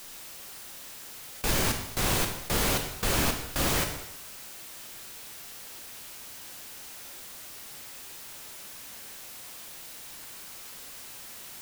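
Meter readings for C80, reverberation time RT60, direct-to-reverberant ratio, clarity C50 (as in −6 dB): 9.0 dB, 0.85 s, 3.5 dB, 7.0 dB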